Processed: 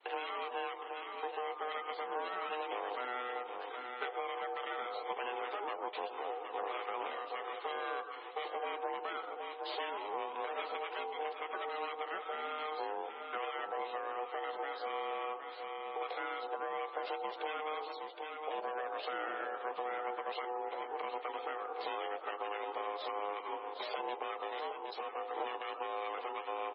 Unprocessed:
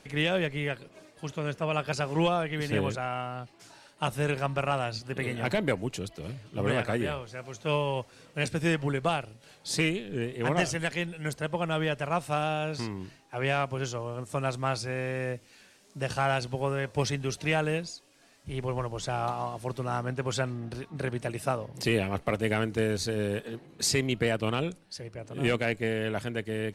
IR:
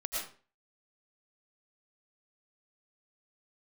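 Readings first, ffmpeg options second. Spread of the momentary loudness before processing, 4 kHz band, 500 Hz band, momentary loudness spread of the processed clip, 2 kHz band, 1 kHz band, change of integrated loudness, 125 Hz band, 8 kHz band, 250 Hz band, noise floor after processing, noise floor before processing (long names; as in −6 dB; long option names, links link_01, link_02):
11 LU, −10.0 dB, −9.5 dB, 3 LU, −9.5 dB, −2.5 dB, −9.5 dB, below −40 dB, below −40 dB, −21.5 dB, −47 dBFS, −58 dBFS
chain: -filter_complex "[0:a]agate=range=-33dB:threshold=-50dB:ratio=3:detection=peak,alimiter=limit=-23.5dB:level=0:latency=1:release=184,asplit=2[link_01][link_02];[link_02]asuperstop=centerf=2400:order=20:qfactor=0.51[link_03];[1:a]atrim=start_sample=2205[link_04];[link_03][link_04]afir=irnorm=-1:irlink=0,volume=-12.5dB[link_05];[link_01][link_05]amix=inputs=2:normalize=0,aeval=exprs='clip(val(0),-1,0.015)':channel_layout=same,aecho=1:1:767|1534:0.282|0.0423,aeval=exprs='val(0)*sin(2*PI*560*n/s)':channel_layout=same,highpass=frequency=320:width_type=q:width=0.5412,highpass=frequency=320:width_type=q:width=1.307,lowpass=frequency=3600:width_type=q:width=0.5176,lowpass=frequency=3600:width_type=q:width=0.7071,lowpass=frequency=3600:width_type=q:width=1.932,afreqshift=56,acompressor=threshold=-49dB:ratio=2.5,volume=9.5dB" -ar 22050 -c:a libmp3lame -b:a 16k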